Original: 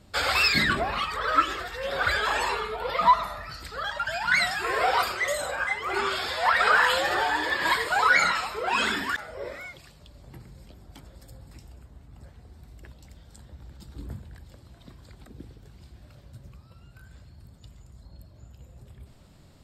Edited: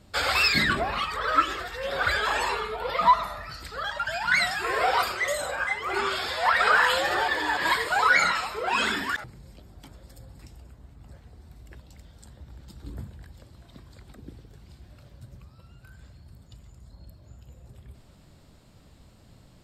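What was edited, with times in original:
7.28–7.57 s: reverse
9.24–10.36 s: delete

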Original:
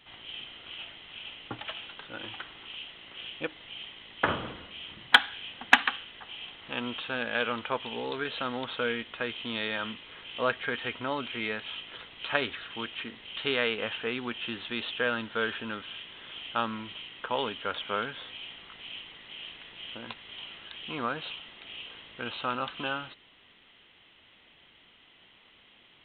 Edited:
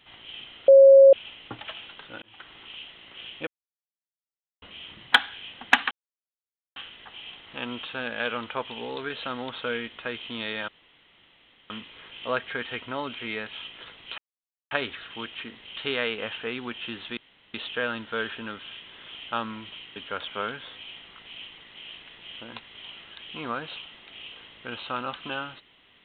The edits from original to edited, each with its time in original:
0.68–1.13 s: bleep 545 Hz -8.5 dBFS
2.22–2.55 s: fade in
3.47–4.62 s: mute
5.91 s: insert silence 0.85 s
9.83 s: insert room tone 1.02 s
12.31 s: insert silence 0.53 s
14.77 s: insert room tone 0.37 s
17.19–17.50 s: delete

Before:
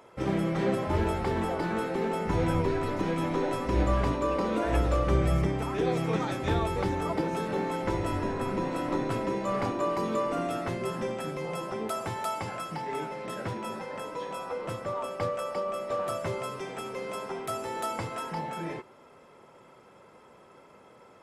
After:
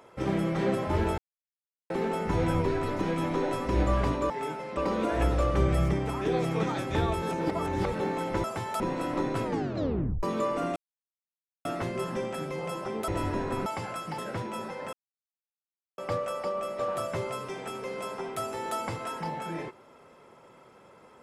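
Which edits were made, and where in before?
1.18–1.90 s: mute
6.75–7.46 s: reverse
7.97–8.55 s: swap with 11.94–12.30 s
9.19 s: tape stop 0.79 s
10.51 s: insert silence 0.89 s
12.82–13.29 s: move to 4.30 s
14.04–15.09 s: mute

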